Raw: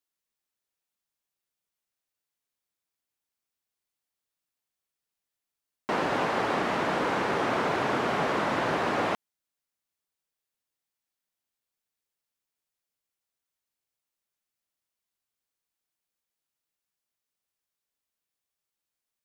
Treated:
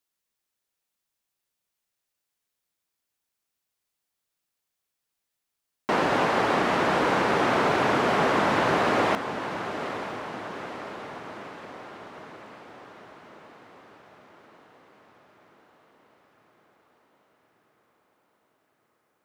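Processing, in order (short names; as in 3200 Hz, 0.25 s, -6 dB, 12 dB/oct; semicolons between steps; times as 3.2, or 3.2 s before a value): diffused feedback echo 0.927 s, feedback 60%, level -10.5 dB; gain +4 dB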